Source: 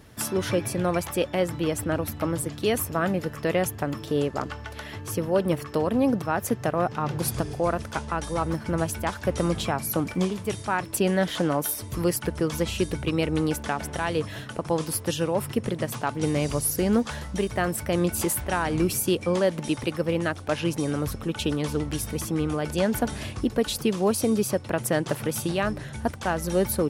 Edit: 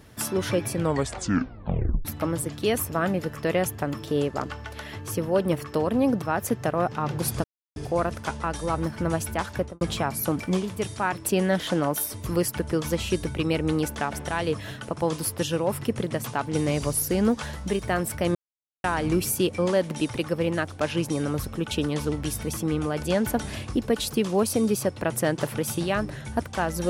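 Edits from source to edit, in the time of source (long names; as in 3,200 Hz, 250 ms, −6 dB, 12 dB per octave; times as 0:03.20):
0:00.73: tape stop 1.32 s
0:07.44: splice in silence 0.32 s
0:09.21–0:09.49: fade out and dull
0:18.03–0:18.52: silence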